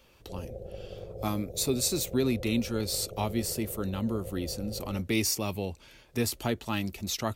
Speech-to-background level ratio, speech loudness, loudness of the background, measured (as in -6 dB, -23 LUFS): 12.0 dB, -31.0 LUFS, -43.0 LUFS